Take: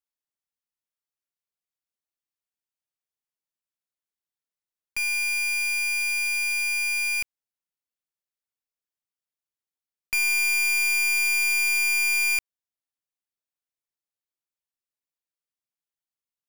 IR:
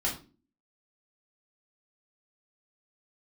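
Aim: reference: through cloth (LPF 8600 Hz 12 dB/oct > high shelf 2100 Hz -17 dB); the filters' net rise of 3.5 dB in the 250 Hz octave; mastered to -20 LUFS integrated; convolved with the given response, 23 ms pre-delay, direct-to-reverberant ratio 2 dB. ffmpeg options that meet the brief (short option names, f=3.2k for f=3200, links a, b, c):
-filter_complex "[0:a]equalizer=f=250:t=o:g=5,asplit=2[a][b];[1:a]atrim=start_sample=2205,adelay=23[c];[b][c]afir=irnorm=-1:irlink=0,volume=-8.5dB[d];[a][d]amix=inputs=2:normalize=0,lowpass=8.6k,highshelf=f=2.1k:g=-17,volume=13dB"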